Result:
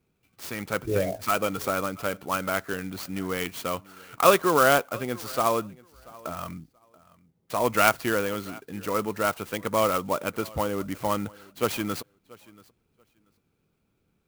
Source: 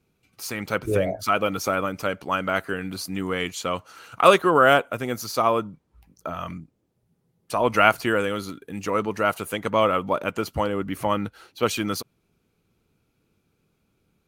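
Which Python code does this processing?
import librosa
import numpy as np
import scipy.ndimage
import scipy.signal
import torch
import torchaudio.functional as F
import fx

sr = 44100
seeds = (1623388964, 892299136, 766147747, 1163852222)

y = fx.peak_eq(x, sr, hz=10000.0, db=-7.5, octaves=0.23)
y = fx.echo_feedback(y, sr, ms=683, feedback_pct=17, wet_db=-23)
y = fx.clock_jitter(y, sr, seeds[0], jitter_ms=0.038)
y = F.gain(torch.from_numpy(y), -3.0).numpy()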